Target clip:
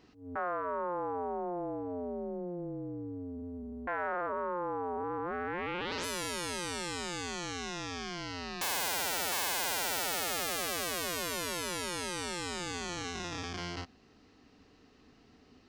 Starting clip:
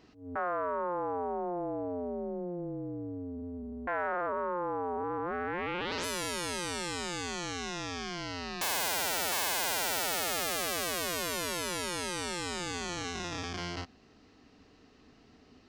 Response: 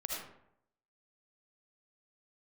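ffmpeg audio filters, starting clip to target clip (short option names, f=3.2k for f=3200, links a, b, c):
-af "bandreject=f=640:w=18,volume=-1.5dB"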